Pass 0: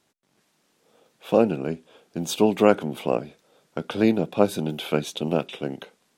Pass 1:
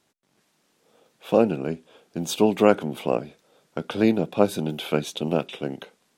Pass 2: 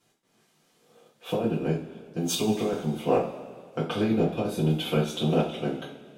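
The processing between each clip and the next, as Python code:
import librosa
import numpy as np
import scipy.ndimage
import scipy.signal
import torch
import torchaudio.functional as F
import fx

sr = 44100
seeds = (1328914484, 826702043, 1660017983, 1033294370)

y1 = x
y2 = fx.transient(y1, sr, attack_db=-1, sustain_db=-8)
y2 = fx.over_compress(y2, sr, threshold_db=-21.0, ratio=-0.5)
y2 = fx.rev_double_slope(y2, sr, seeds[0], early_s=0.32, late_s=2.1, knee_db=-18, drr_db=-7.5)
y2 = y2 * librosa.db_to_amplitude(-9.0)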